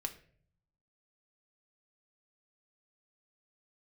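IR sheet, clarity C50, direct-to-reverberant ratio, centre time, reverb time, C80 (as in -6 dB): 14.0 dB, 4.0 dB, 8 ms, 0.50 s, 17.5 dB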